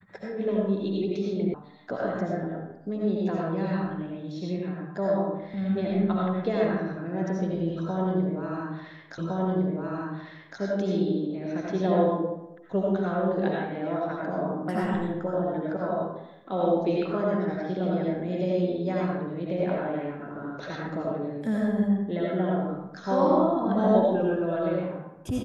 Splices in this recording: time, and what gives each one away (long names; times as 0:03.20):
0:01.54: cut off before it has died away
0:09.18: the same again, the last 1.41 s